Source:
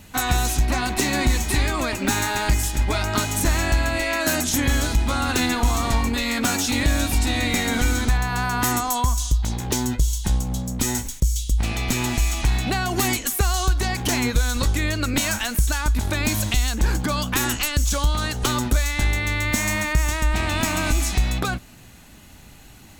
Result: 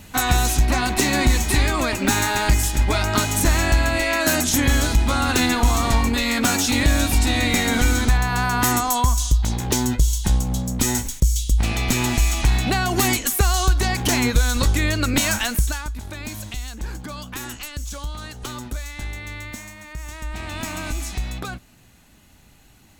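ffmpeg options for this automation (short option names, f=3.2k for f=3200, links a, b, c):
-af "volume=14.5dB,afade=t=out:st=15.46:d=0.45:silence=0.237137,afade=t=out:st=19.39:d=0.36:silence=0.375837,afade=t=in:st=19.75:d=0.93:silence=0.251189"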